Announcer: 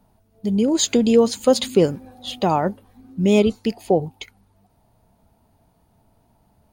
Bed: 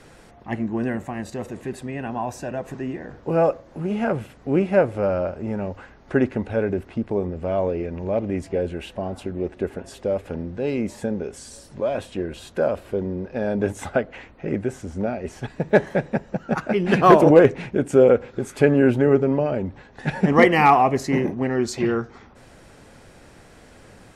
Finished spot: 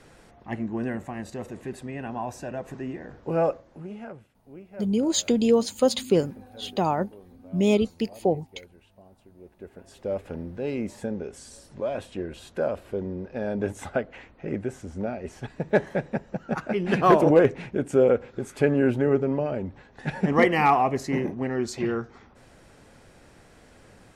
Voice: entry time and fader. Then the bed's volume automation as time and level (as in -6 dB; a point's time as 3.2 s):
4.35 s, -5.0 dB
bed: 3.53 s -4.5 dB
4.42 s -25 dB
9.3 s -25 dB
10.13 s -5 dB